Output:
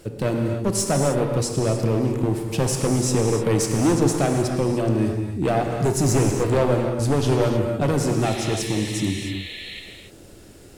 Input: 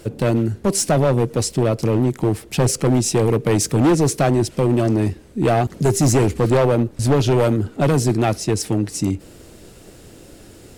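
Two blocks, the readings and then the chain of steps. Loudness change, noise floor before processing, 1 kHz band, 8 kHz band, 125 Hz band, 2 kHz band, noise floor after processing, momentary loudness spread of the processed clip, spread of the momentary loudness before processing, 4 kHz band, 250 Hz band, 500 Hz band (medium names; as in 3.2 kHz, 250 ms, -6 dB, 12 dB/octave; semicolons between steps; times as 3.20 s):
-3.5 dB, -44 dBFS, -3.5 dB, -3.0 dB, -3.5 dB, -2.0 dB, -45 dBFS, 5 LU, 5 LU, -1.5 dB, -3.0 dB, -3.0 dB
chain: painted sound noise, 8.25–9.80 s, 1.7–4.3 kHz -33 dBFS; gated-style reverb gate 330 ms flat, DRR 2.5 dB; trim -5 dB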